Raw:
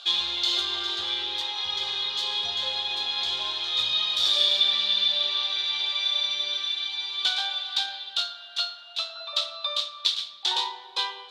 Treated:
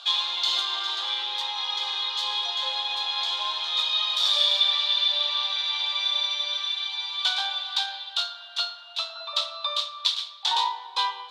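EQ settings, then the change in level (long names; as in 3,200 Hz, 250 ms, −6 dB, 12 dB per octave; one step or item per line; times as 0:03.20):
high-pass filter 500 Hz 24 dB per octave
parametric band 1,000 Hz +8 dB 0.52 octaves
0.0 dB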